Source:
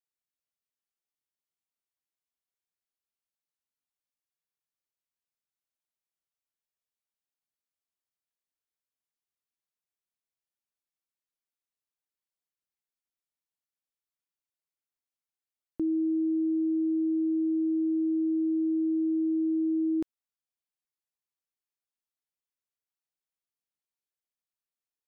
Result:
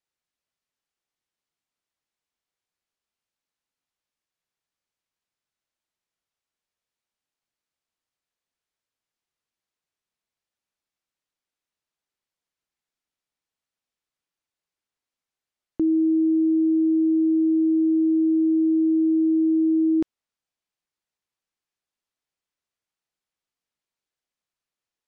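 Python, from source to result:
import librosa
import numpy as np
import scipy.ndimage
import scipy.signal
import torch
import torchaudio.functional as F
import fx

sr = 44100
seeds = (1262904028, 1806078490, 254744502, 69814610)

y = fx.air_absorb(x, sr, metres=51.0)
y = y * librosa.db_to_amplitude(7.5)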